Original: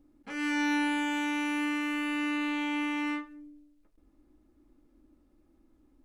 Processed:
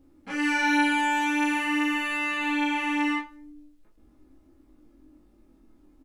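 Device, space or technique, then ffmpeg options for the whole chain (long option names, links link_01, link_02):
double-tracked vocal: -filter_complex "[0:a]asplit=2[link_01][link_02];[link_02]adelay=26,volume=-4dB[link_03];[link_01][link_03]amix=inputs=2:normalize=0,flanger=delay=15:depth=6.6:speed=0.45,volume=8dB"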